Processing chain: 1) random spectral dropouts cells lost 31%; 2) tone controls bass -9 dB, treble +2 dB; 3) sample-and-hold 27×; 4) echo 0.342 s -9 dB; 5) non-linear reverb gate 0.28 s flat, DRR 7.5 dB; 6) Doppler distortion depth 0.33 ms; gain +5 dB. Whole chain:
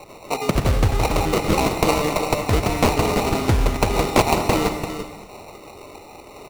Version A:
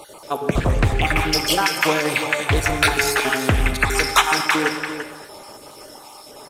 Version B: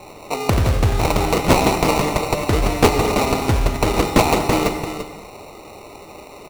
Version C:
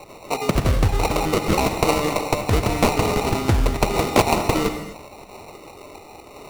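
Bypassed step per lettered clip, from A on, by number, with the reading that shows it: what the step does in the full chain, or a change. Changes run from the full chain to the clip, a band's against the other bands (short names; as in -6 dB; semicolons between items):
3, crest factor change +2.0 dB; 1, momentary loudness spread change -3 LU; 4, momentary loudness spread change +1 LU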